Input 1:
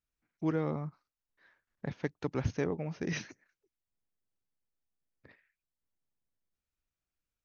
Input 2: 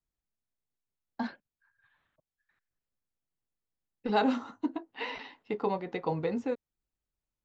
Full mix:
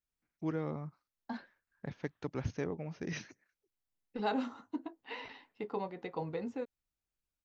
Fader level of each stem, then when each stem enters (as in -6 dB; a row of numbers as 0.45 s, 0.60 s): -4.5 dB, -7.0 dB; 0.00 s, 0.10 s